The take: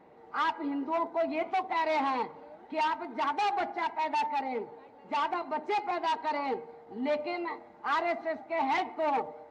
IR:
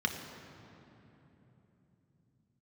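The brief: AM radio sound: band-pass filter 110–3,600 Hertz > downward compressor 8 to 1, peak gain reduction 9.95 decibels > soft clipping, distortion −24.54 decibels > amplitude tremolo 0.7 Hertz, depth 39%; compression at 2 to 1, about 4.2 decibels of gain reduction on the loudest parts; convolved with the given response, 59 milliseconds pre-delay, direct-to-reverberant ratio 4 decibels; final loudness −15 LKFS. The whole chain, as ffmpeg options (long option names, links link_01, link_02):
-filter_complex "[0:a]acompressor=threshold=-33dB:ratio=2,asplit=2[link_01][link_02];[1:a]atrim=start_sample=2205,adelay=59[link_03];[link_02][link_03]afir=irnorm=-1:irlink=0,volume=-11dB[link_04];[link_01][link_04]amix=inputs=2:normalize=0,highpass=110,lowpass=3600,acompressor=threshold=-37dB:ratio=8,asoftclip=threshold=-30.5dB,tremolo=f=0.7:d=0.39,volume=28.5dB"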